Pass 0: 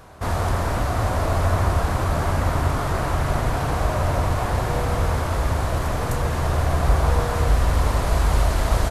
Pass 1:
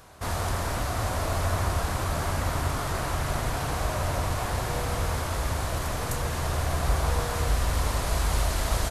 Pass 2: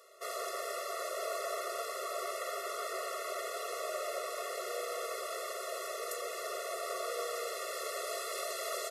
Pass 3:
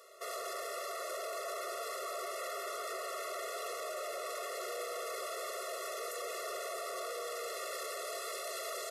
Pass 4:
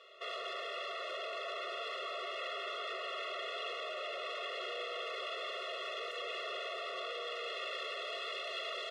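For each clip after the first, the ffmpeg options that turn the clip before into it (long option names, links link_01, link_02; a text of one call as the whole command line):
ffmpeg -i in.wav -af "highshelf=frequency=2300:gain=9,volume=-7dB" out.wav
ffmpeg -i in.wav -af "afftfilt=real='re*eq(mod(floor(b*sr/1024/360),2),1)':imag='im*eq(mod(floor(b*sr/1024/360),2),1)':win_size=1024:overlap=0.75,volume=-3.5dB" out.wav
ffmpeg -i in.wav -af "alimiter=level_in=10dB:limit=-24dB:level=0:latency=1:release=11,volume=-10dB,volume=2dB" out.wav
ffmpeg -i in.wav -af "lowpass=frequency=3100:width_type=q:width=6.5,volume=-2.5dB" out.wav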